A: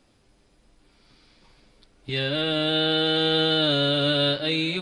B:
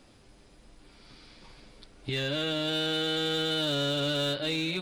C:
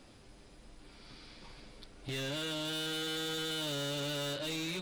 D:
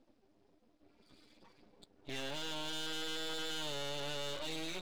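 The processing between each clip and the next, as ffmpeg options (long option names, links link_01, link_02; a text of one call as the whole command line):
ffmpeg -i in.wav -filter_complex "[0:a]asplit=2[link_01][link_02];[link_02]aeval=exprs='0.0794*(abs(mod(val(0)/0.0794+3,4)-2)-1)':channel_layout=same,volume=-7dB[link_03];[link_01][link_03]amix=inputs=2:normalize=0,acompressor=threshold=-37dB:ratio=2,volume=1.5dB" out.wav
ffmpeg -i in.wav -af "asoftclip=type=tanh:threshold=-35dB" out.wav
ffmpeg -i in.wav -af "highpass=200,lowpass=6800,afftdn=noise_reduction=19:noise_floor=-51,aeval=exprs='max(val(0),0)':channel_layout=same,volume=1.5dB" out.wav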